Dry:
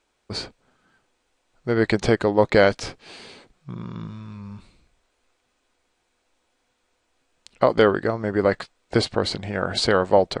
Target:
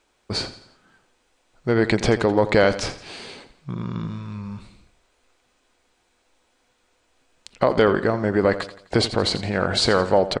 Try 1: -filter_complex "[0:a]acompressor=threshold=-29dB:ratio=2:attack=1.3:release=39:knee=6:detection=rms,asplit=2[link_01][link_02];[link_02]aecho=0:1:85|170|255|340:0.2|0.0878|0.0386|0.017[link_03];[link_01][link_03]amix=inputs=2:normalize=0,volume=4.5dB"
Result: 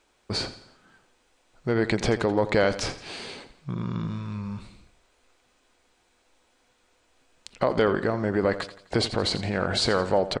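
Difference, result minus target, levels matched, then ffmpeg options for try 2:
downward compressor: peak gain reduction +5 dB
-filter_complex "[0:a]acompressor=threshold=-19dB:ratio=2:attack=1.3:release=39:knee=6:detection=rms,asplit=2[link_01][link_02];[link_02]aecho=0:1:85|170|255|340:0.2|0.0878|0.0386|0.017[link_03];[link_01][link_03]amix=inputs=2:normalize=0,volume=4.5dB"

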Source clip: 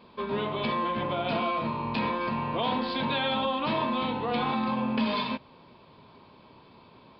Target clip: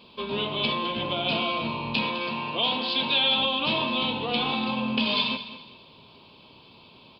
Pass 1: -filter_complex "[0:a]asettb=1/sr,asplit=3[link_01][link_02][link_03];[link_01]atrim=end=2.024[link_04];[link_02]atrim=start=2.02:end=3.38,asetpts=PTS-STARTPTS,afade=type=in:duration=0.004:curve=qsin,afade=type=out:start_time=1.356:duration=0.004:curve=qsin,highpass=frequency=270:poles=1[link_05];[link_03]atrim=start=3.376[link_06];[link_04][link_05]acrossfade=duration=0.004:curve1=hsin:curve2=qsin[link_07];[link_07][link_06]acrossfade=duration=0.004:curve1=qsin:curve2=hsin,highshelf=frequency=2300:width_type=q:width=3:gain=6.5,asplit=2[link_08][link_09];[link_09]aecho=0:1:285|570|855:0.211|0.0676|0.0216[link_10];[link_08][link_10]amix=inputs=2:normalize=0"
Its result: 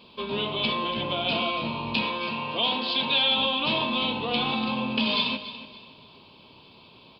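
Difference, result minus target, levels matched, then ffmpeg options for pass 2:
echo 79 ms late
-filter_complex "[0:a]asettb=1/sr,asplit=3[link_01][link_02][link_03];[link_01]atrim=end=2.024[link_04];[link_02]atrim=start=2.02:end=3.38,asetpts=PTS-STARTPTS,afade=type=in:duration=0.004:curve=qsin,afade=type=out:start_time=1.356:duration=0.004:curve=qsin,highpass=frequency=270:poles=1[link_05];[link_03]atrim=start=3.376[link_06];[link_04][link_05]acrossfade=duration=0.004:curve1=hsin:curve2=qsin[link_07];[link_07][link_06]acrossfade=duration=0.004:curve1=qsin:curve2=hsin,highshelf=frequency=2300:width_type=q:width=3:gain=6.5,asplit=2[link_08][link_09];[link_09]aecho=0:1:206|412|618:0.211|0.0676|0.0216[link_10];[link_08][link_10]amix=inputs=2:normalize=0"

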